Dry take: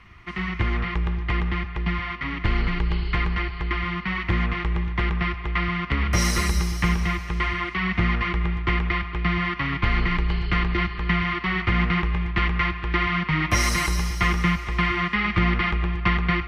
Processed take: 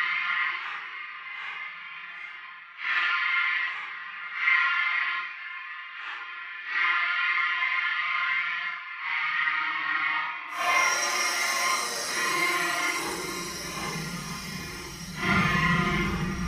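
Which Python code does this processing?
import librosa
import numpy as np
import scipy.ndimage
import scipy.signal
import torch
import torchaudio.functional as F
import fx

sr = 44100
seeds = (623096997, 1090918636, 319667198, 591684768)

y = fx.filter_sweep_highpass(x, sr, from_hz=1500.0, to_hz=98.0, start_s=13.27, end_s=14.41, q=1.4)
y = fx.paulstretch(y, sr, seeds[0], factor=6.7, window_s=0.05, from_s=11.93)
y = y * 10.0 ** (-3.5 / 20.0)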